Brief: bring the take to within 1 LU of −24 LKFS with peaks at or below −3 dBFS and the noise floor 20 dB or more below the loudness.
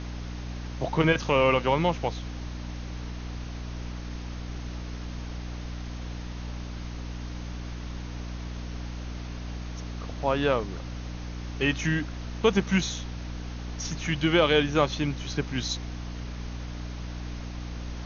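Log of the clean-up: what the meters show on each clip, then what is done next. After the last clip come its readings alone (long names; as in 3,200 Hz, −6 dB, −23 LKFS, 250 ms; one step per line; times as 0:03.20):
mains hum 60 Hz; hum harmonics up to 300 Hz; level of the hum −33 dBFS; background noise floor −37 dBFS; target noise floor −50 dBFS; integrated loudness −30.0 LKFS; sample peak −8.5 dBFS; target loudness −24.0 LKFS
→ mains-hum notches 60/120/180/240/300 Hz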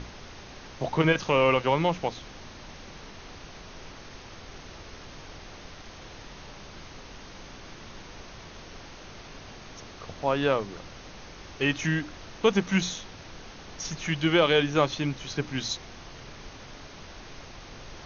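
mains hum none found; background noise floor −46 dBFS; target noise floor −47 dBFS
→ noise reduction from a noise print 6 dB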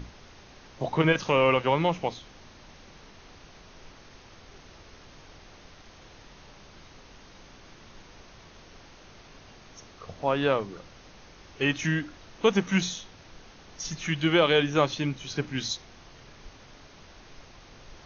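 background noise floor −52 dBFS; integrated loudness −26.5 LKFS; sample peak −8.5 dBFS; target loudness −24.0 LKFS
→ level +2.5 dB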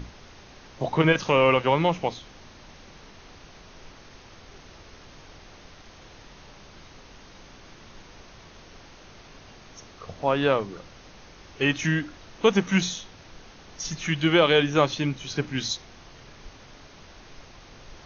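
integrated loudness −24.0 LKFS; sample peak −6.0 dBFS; background noise floor −49 dBFS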